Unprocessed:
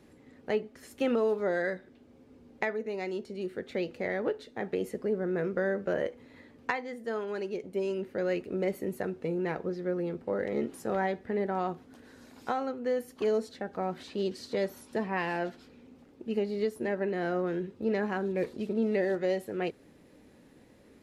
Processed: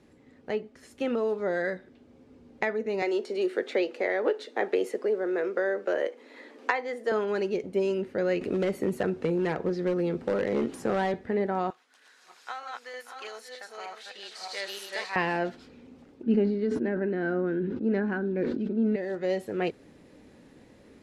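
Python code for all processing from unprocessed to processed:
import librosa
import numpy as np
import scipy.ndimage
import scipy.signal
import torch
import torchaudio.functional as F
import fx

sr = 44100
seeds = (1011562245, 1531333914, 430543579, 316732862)

y = fx.chain(x, sr, fx.highpass(hz=320.0, slope=24),
    fx.band_squash(depth_pct=40), at=(3.02, 7.12))
y = fx.chain(y, sr, fx.clip_hard(threshold_db=-26.0),
    fx.band_squash(depth_pct=70), at=(8.41, 11.14))
y = fx.chain(y, sr, fx.reverse_delay_fb(ms=309, feedback_pct=42, wet_db=-2.0),
    fx.highpass(hz=1400.0, slope=12),
    fx.echo_single(ms=582, db=-14.0), at=(11.7, 15.16))
y = fx.chain(y, sr, fx.air_absorb(metres=130.0),
    fx.small_body(hz=(260.0, 1500.0), ring_ms=25, db=14),
    fx.sustainer(db_per_s=28.0), at=(16.23, 18.96))
y = scipy.signal.sosfilt(scipy.signal.butter(2, 9300.0, 'lowpass', fs=sr, output='sos'), y)
y = fx.rider(y, sr, range_db=10, speed_s=0.5)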